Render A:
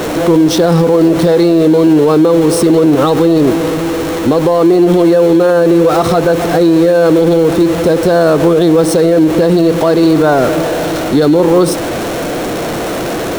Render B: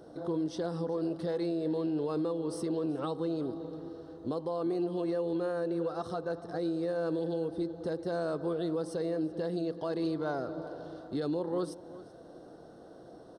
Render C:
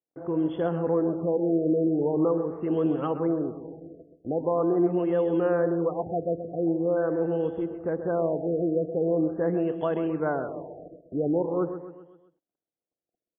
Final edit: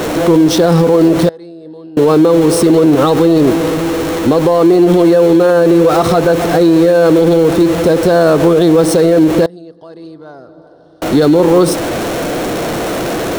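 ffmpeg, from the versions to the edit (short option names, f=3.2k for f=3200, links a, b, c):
-filter_complex "[1:a]asplit=2[a][b];[0:a]asplit=3[c][d][e];[c]atrim=end=1.292[f];[a]atrim=start=1.288:end=1.972[g];[d]atrim=start=1.968:end=9.462[h];[b]atrim=start=9.458:end=11.022[i];[e]atrim=start=11.018[j];[f][g]acrossfade=d=0.004:c1=hsin:c2=hsin[k];[k][h]acrossfade=d=0.004:c1=hsin:c2=hsin[l];[l][i]acrossfade=d=0.004:c1=hsin:c2=hsin[m];[m][j]acrossfade=d=0.004:c1=hsin:c2=hsin"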